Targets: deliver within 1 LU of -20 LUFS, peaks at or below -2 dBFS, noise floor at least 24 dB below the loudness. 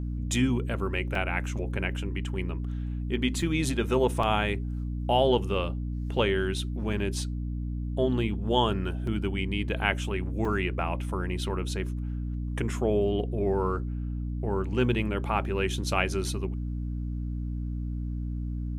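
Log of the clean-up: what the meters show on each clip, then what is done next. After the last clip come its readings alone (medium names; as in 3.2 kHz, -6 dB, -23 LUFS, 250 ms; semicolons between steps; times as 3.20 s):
dropouts 5; longest dropout 3.2 ms; hum 60 Hz; highest harmonic 300 Hz; hum level -29 dBFS; loudness -29.0 LUFS; peak level -8.5 dBFS; loudness target -20.0 LUFS
-> interpolate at 1.15/3.42/4.23/9.07/10.45 s, 3.2 ms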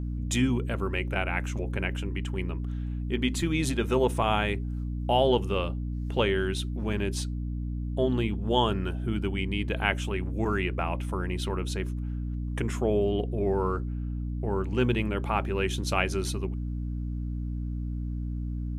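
dropouts 0; hum 60 Hz; highest harmonic 300 Hz; hum level -29 dBFS
-> hum notches 60/120/180/240/300 Hz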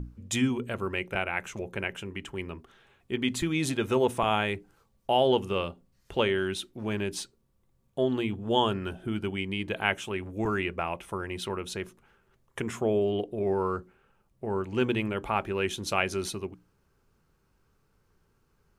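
hum not found; loudness -30.0 LUFS; peak level -9.0 dBFS; loudness target -20.0 LUFS
-> trim +10 dB; peak limiter -2 dBFS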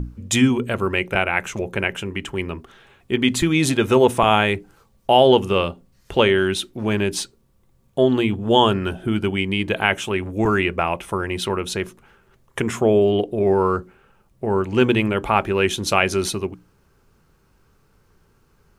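loudness -20.0 LUFS; peak level -2.0 dBFS; noise floor -60 dBFS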